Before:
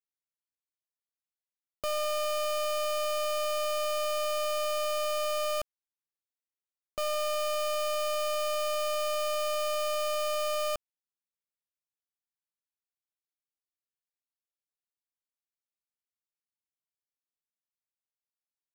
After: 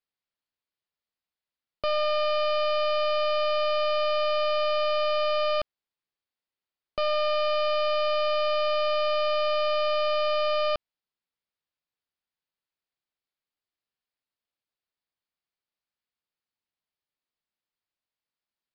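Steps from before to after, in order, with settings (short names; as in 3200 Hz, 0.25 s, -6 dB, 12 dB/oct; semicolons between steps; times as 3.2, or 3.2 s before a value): downsampling 11025 Hz; gain +5.5 dB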